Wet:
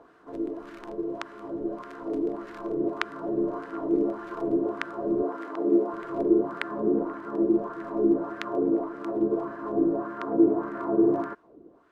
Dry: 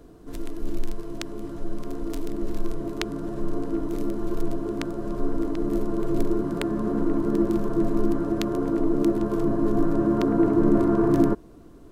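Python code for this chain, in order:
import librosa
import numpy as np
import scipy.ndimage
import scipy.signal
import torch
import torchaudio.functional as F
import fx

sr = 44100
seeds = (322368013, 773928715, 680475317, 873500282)

y = fx.highpass(x, sr, hz=240.0, slope=12, at=(5.22, 5.94))
y = fx.rider(y, sr, range_db=3, speed_s=0.5)
y = fx.wah_lfo(y, sr, hz=1.7, low_hz=370.0, high_hz=1700.0, q=2.1)
y = F.gain(torch.from_numpy(y), 6.0).numpy()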